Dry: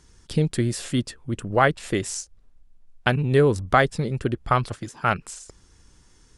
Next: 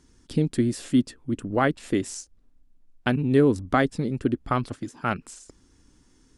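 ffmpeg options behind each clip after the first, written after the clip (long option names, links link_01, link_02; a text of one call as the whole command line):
ffmpeg -i in.wav -af "equalizer=frequency=270:width_type=o:width=0.73:gain=12,volume=-5.5dB" out.wav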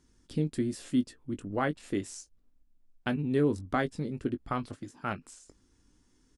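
ffmpeg -i in.wav -filter_complex "[0:a]asplit=2[link_01][link_02];[link_02]adelay=20,volume=-10dB[link_03];[link_01][link_03]amix=inputs=2:normalize=0,volume=-8dB" out.wav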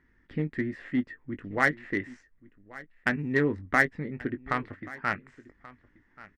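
ffmpeg -i in.wav -filter_complex "[0:a]lowpass=frequency=1900:width_type=q:width=8.4,asplit=2[link_01][link_02];[link_02]acrusher=bits=2:mix=0:aa=0.5,volume=-11.5dB[link_03];[link_01][link_03]amix=inputs=2:normalize=0,aecho=1:1:1132:0.1,volume=-1dB" out.wav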